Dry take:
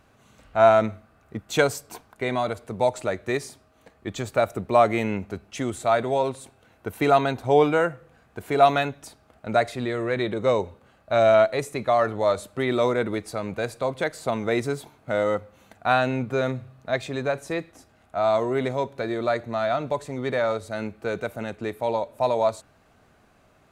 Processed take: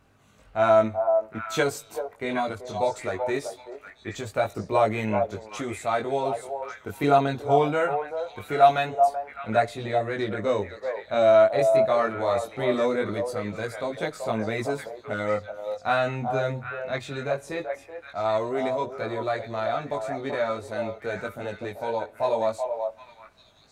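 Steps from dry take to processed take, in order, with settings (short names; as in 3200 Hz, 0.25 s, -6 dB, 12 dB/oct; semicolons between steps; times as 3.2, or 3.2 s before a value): chorus voices 2, 0.21 Hz, delay 20 ms, depth 1.8 ms; delay with a stepping band-pass 0.383 s, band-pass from 680 Hz, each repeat 1.4 oct, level -3.5 dB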